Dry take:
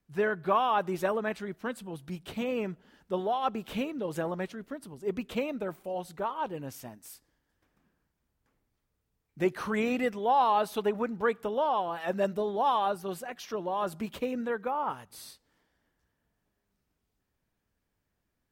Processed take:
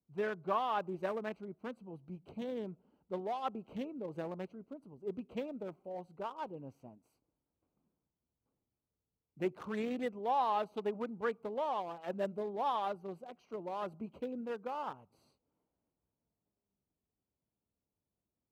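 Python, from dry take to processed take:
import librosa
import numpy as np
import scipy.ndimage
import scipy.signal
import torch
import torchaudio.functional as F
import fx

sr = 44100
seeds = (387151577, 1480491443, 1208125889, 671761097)

y = fx.wiener(x, sr, points=25)
y = scipy.signal.sosfilt(scipy.signal.butter(2, 48.0, 'highpass', fs=sr, output='sos'), y)
y = fx.low_shelf(y, sr, hz=69.0, db=-7.5)
y = y * librosa.db_to_amplitude(-7.0)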